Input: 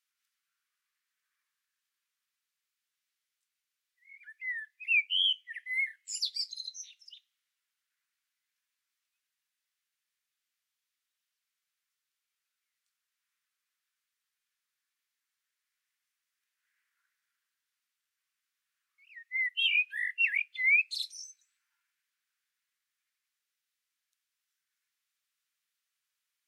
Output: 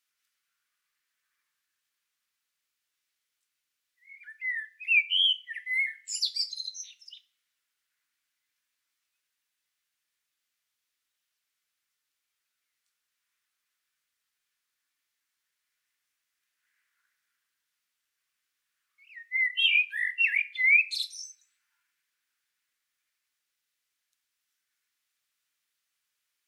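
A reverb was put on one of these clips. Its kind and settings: FDN reverb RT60 0.48 s, high-frequency decay 0.75×, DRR 10 dB; trim +3.5 dB

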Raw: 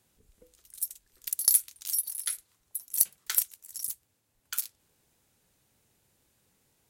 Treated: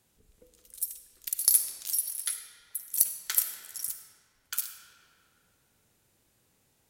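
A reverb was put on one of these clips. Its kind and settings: algorithmic reverb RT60 2.6 s, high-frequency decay 0.65×, pre-delay 15 ms, DRR 6 dB

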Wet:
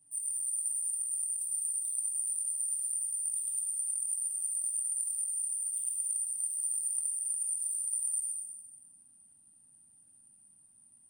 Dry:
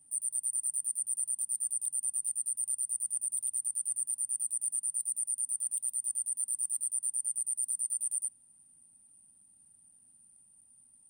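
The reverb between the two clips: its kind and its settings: plate-style reverb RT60 2.2 s, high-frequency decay 0.65×, DRR -5.5 dB; trim -5.5 dB

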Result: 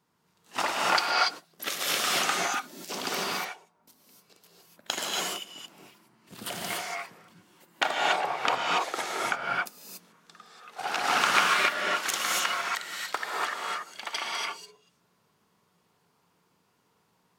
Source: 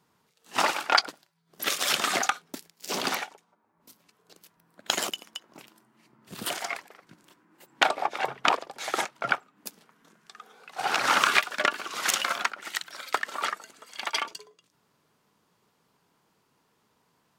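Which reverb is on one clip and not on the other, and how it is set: gated-style reverb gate 310 ms rising, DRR -3.5 dB; trim -5 dB

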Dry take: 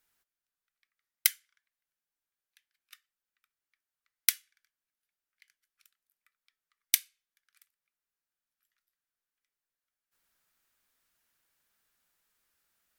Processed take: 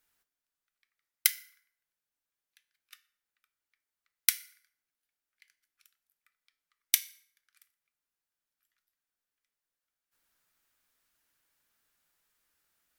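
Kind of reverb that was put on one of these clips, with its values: FDN reverb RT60 0.71 s, high-frequency decay 0.7×, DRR 12 dB

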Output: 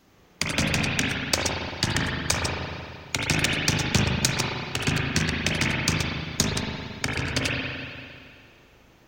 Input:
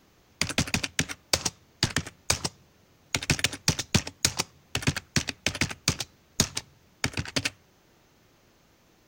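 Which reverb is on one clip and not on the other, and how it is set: spring tank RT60 2.2 s, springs 38/56 ms, chirp 55 ms, DRR -4 dB

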